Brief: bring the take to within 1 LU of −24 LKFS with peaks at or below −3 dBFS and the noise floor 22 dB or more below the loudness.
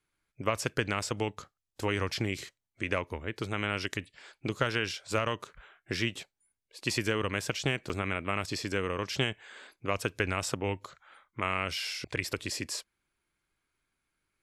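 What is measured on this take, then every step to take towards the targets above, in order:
number of dropouts 1; longest dropout 6.5 ms; integrated loudness −33.0 LKFS; sample peak −13.5 dBFS; target loudness −24.0 LKFS
→ repair the gap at 0:07.89, 6.5 ms
level +9 dB

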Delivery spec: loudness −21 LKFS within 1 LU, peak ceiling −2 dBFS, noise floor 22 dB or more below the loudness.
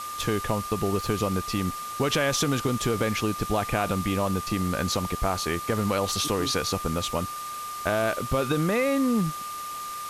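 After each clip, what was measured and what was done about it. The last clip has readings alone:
interfering tone 1,200 Hz; level of the tone −33 dBFS; background noise floor −35 dBFS; target noise floor −49 dBFS; integrated loudness −26.5 LKFS; sample peak −11.0 dBFS; target loudness −21.0 LKFS
→ notch filter 1,200 Hz, Q 30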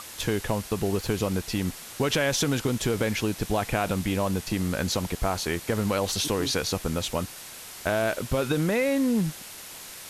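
interfering tone none found; background noise floor −42 dBFS; target noise floor −49 dBFS
→ broadband denoise 7 dB, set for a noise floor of −42 dBFS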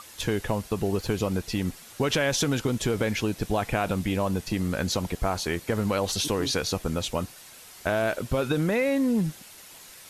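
background noise floor −48 dBFS; target noise floor −49 dBFS
→ broadband denoise 6 dB, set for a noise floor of −48 dBFS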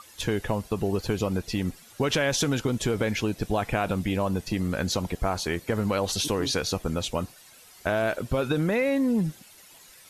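background noise floor −52 dBFS; integrated loudness −27.5 LKFS; sample peak −11.0 dBFS; target loudness −21.0 LKFS
→ level +6.5 dB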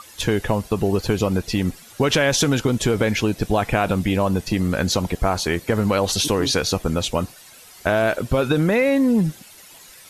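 integrated loudness −21.0 LKFS; sample peak −4.5 dBFS; background noise floor −45 dBFS

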